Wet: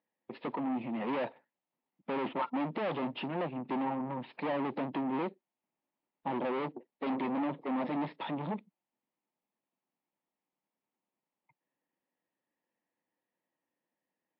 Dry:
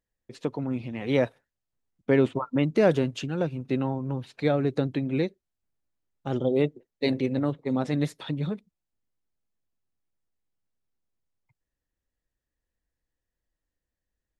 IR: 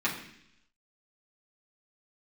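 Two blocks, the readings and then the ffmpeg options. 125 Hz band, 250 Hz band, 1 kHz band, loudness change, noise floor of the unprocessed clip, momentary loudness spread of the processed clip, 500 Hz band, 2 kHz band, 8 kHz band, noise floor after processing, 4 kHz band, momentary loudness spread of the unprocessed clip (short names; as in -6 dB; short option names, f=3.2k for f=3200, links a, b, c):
-16.0 dB, -7.5 dB, +1.5 dB, -8.5 dB, under -85 dBFS, 6 LU, -10.5 dB, -6.5 dB, n/a, under -85 dBFS, -8.5 dB, 9 LU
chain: -af "equalizer=f=440:t=o:w=1.1:g=2.5,aeval=exprs='(tanh(63.1*val(0)+0.55)-tanh(0.55))/63.1':c=same,highpass=f=190:w=0.5412,highpass=f=190:w=1.3066,equalizer=f=430:t=q:w=4:g=-6,equalizer=f=900:t=q:w=4:g=7,equalizer=f=1.5k:t=q:w=4:g=-7,lowpass=f=2.8k:w=0.5412,lowpass=f=2.8k:w=1.3066,volume=6.5dB" -ar 12000 -c:a libmp3lame -b:a 40k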